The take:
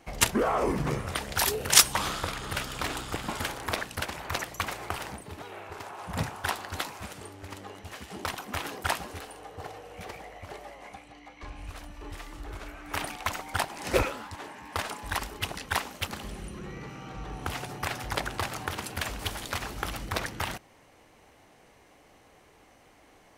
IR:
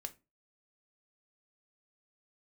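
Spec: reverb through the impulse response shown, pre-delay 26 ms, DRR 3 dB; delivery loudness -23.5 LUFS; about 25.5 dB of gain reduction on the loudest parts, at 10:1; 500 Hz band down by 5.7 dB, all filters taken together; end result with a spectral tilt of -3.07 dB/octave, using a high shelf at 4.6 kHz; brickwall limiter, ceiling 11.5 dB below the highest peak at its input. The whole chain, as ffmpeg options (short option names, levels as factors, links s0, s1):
-filter_complex "[0:a]equalizer=f=500:t=o:g=-7.5,highshelf=f=4600:g=8.5,acompressor=threshold=0.0224:ratio=10,alimiter=level_in=1.33:limit=0.0631:level=0:latency=1,volume=0.75,asplit=2[s0][s1];[1:a]atrim=start_sample=2205,adelay=26[s2];[s1][s2]afir=irnorm=-1:irlink=0,volume=1.06[s3];[s0][s3]amix=inputs=2:normalize=0,volume=5.62"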